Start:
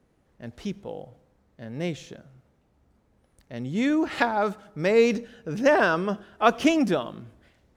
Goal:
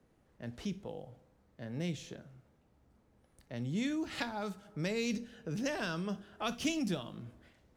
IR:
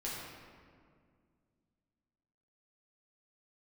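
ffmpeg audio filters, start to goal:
-filter_complex "[0:a]asplit=2[link_01][link_02];[1:a]atrim=start_sample=2205,atrim=end_sample=3087[link_03];[link_02][link_03]afir=irnorm=-1:irlink=0,volume=-9dB[link_04];[link_01][link_04]amix=inputs=2:normalize=0,acrossover=split=190|3000[link_05][link_06][link_07];[link_06]acompressor=threshold=-37dB:ratio=3[link_08];[link_05][link_08][link_07]amix=inputs=3:normalize=0,volume=-5dB"

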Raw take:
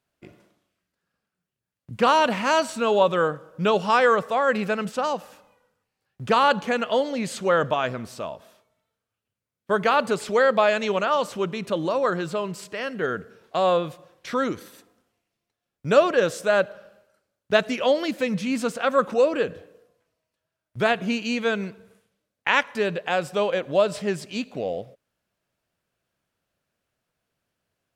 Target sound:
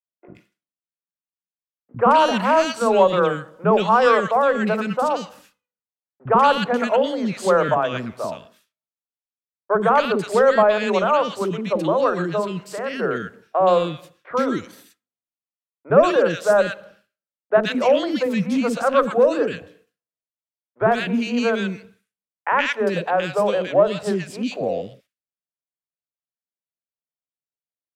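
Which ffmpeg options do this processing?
ffmpeg -i in.wav -filter_complex "[0:a]agate=range=-33dB:threshold=-45dB:ratio=3:detection=peak,acrossover=split=150|1700[link_01][link_02][link_03];[link_02]acontrast=71[link_04];[link_01][link_04][link_03]amix=inputs=3:normalize=0,acrossover=split=400|1700[link_05][link_06][link_07];[link_05]adelay=50[link_08];[link_07]adelay=120[link_09];[link_08][link_06][link_09]amix=inputs=3:normalize=0" out.wav

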